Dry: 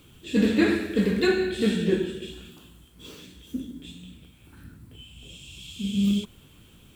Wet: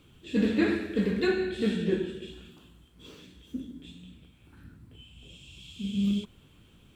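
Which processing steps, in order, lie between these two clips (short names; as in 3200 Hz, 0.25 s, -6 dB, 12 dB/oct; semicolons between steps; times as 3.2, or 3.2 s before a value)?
high shelf 7000 Hz -11 dB; gain -4 dB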